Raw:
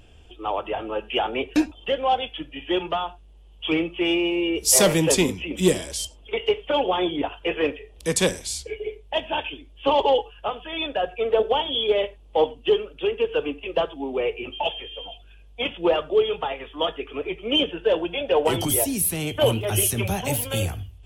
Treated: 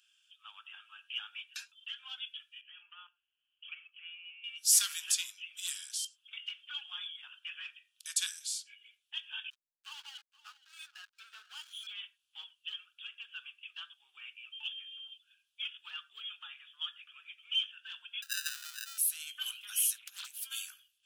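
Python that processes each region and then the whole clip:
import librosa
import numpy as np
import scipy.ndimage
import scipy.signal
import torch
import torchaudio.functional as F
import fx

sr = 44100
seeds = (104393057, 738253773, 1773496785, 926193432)

y = fx.chain(x, sr, fx.steep_lowpass(hz=3100.0, slope=72),
    fx.level_steps(step_db=10), at=(2.61, 4.44))
y = fx.chain(y, sr, fx.lowpass(hz=2800.0, slope=24),
    fx.backlash(play_db=-27.0),
    fx.echo_single(ms=472, db=-19.0), at=(9.5, 11.87))
y = fx.chain(y, sr, fx.air_absorb(metres=240.0),
    fx.sample_hold(seeds[0], rate_hz=1100.0, jitter_pct=0), at=(18.22, 18.98))
y = fx.chain(y, sr, fx.over_compress(threshold_db=-30.0, ratio=-0.5),
    fx.doppler_dist(depth_ms=0.64), at=(19.96, 20.43))
y = scipy.signal.sosfilt(scipy.signal.ellip(4, 1.0, 60, 1500.0, 'highpass', fs=sr, output='sos'), y)
y = fx.peak_eq(y, sr, hz=2000.0, db=-14.5, octaves=0.56)
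y = y * librosa.db_to_amplitude(-6.0)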